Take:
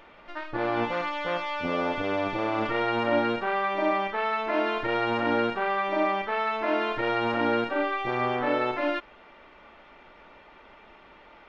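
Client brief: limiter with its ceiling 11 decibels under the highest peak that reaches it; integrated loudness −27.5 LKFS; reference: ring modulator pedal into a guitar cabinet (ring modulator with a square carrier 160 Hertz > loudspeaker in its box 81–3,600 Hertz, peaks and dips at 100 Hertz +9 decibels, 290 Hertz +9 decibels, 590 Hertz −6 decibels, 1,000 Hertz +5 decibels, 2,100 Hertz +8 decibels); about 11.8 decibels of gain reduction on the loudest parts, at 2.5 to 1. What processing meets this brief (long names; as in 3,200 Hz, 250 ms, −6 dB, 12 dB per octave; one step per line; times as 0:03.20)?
downward compressor 2.5 to 1, threshold −39 dBFS
brickwall limiter −34.5 dBFS
ring modulator with a square carrier 160 Hz
loudspeaker in its box 81–3,600 Hz, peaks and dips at 100 Hz +9 dB, 290 Hz +9 dB, 590 Hz −6 dB, 1,000 Hz +5 dB, 2,100 Hz +8 dB
level +13.5 dB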